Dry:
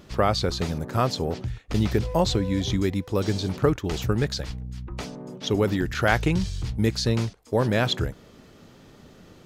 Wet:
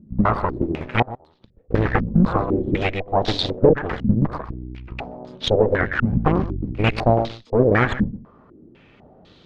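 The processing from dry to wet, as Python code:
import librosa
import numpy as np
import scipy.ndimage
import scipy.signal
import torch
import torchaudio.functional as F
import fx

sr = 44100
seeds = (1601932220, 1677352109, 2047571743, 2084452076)

p1 = fx.cheby_harmonics(x, sr, harmonics=(4, 8), levels_db=(-17, -8), full_scale_db=-4.0)
p2 = fx.gate_flip(p1, sr, shuts_db=-17.0, range_db=-30, at=(1.02, 1.58))
p3 = p2 + fx.echo_single(p2, sr, ms=126, db=-14.5, dry=0)
p4 = fx.filter_held_lowpass(p3, sr, hz=4.0, low_hz=220.0, high_hz=3800.0)
y = F.gain(torch.from_numpy(p4), -2.5).numpy()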